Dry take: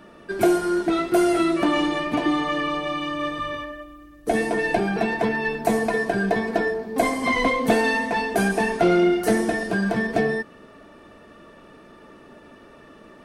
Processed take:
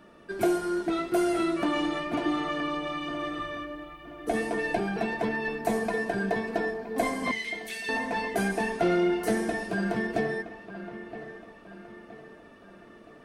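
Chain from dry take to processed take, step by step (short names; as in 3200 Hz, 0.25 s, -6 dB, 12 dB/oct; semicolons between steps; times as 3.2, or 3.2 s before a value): 7.31–7.89 steep high-pass 1900 Hz; dark delay 0.969 s, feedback 46%, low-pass 3100 Hz, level -13 dB; gain -6.5 dB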